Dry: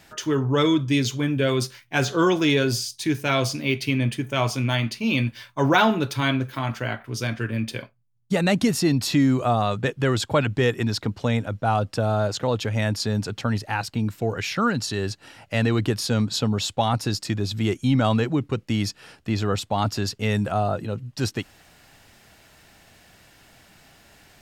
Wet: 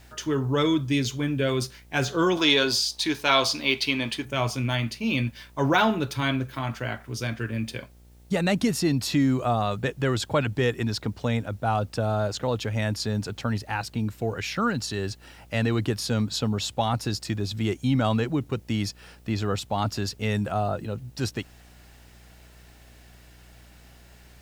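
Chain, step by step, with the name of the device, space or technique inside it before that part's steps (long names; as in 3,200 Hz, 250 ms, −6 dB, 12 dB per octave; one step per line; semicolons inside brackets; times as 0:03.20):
video cassette with head-switching buzz (hum with harmonics 60 Hz, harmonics 15, −49 dBFS −8 dB per octave; white noise bed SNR 39 dB)
0:02.37–0:04.25: octave-band graphic EQ 125/1,000/4,000 Hz −11/+9/+11 dB
level −3 dB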